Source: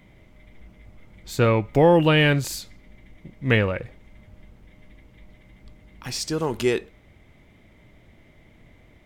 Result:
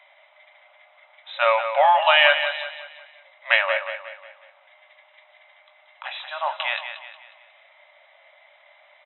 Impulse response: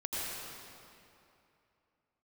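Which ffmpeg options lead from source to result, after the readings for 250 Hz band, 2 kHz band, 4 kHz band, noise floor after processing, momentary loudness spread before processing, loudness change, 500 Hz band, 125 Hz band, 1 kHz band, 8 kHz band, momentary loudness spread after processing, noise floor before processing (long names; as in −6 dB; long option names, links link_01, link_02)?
below −40 dB, +6.5 dB, +6.0 dB, −57 dBFS, 16 LU, +1.5 dB, −2.5 dB, below −40 dB, +7.5 dB, below −40 dB, 23 LU, −54 dBFS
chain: -filter_complex "[0:a]acrossover=split=820[link_01][link_02];[link_01]crystalizer=i=9:c=0[link_03];[link_03][link_02]amix=inputs=2:normalize=0,highshelf=frequency=2200:gain=9,afftfilt=real='re*between(b*sr/4096,540,4000)':imag='im*between(b*sr/4096,540,4000)':win_size=4096:overlap=0.75,equalizer=frequency=910:width=0.73:gain=5.5,asplit=2[link_04][link_05];[link_05]adelay=22,volume=-12.5dB[link_06];[link_04][link_06]amix=inputs=2:normalize=0,asplit=2[link_07][link_08];[link_08]aecho=0:1:181|362|543|724|905:0.355|0.153|0.0656|0.0282|0.0121[link_09];[link_07][link_09]amix=inputs=2:normalize=0,volume=-1dB"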